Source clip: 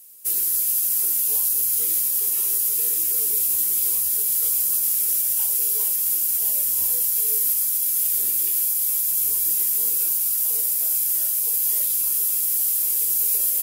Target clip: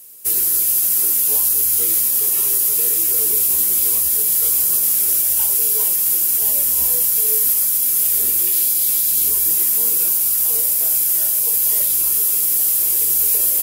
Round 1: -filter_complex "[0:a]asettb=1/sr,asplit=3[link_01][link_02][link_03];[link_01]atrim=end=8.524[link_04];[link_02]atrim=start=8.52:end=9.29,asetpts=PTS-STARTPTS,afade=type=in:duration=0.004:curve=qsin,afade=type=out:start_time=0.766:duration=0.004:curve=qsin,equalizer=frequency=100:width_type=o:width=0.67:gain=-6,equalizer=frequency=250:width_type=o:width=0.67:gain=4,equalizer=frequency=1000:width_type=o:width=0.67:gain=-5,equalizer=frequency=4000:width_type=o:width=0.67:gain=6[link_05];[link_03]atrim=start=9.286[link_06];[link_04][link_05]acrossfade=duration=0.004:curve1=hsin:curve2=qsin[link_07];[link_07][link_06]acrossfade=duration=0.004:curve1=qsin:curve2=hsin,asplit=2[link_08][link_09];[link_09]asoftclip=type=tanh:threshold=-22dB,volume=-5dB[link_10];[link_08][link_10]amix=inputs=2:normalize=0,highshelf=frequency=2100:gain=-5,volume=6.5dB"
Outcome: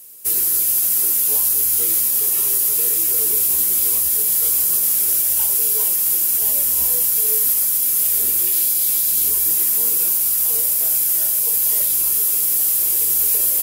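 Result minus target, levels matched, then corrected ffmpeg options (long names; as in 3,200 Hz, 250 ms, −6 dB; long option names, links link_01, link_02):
soft clipping: distortion +7 dB
-filter_complex "[0:a]asettb=1/sr,asplit=3[link_01][link_02][link_03];[link_01]atrim=end=8.524[link_04];[link_02]atrim=start=8.52:end=9.29,asetpts=PTS-STARTPTS,afade=type=in:duration=0.004:curve=qsin,afade=type=out:start_time=0.766:duration=0.004:curve=qsin,equalizer=frequency=100:width_type=o:width=0.67:gain=-6,equalizer=frequency=250:width_type=o:width=0.67:gain=4,equalizer=frequency=1000:width_type=o:width=0.67:gain=-5,equalizer=frequency=4000:width_type=o:width=0.67:gain=6[link_05];[link_03]atrim=start=9.286[link_06];[link_04][link_05]acrossfade=duration=0.004:curve1=hsin:curve2=qsin[link_07];[link_07][link_06]acrossfade=duration=0.004:curve1=qsin:curve2=hsin,asplit=2[link_08][link_09];[link_09]asoftclip=type=tanh:threshold=-15.5dB,volume=-5dB[link_10];[link_08][link_10]amix=inputs=2:normalize=0,highshelf=frequency=2100:gain=-5,volume=6.5dB"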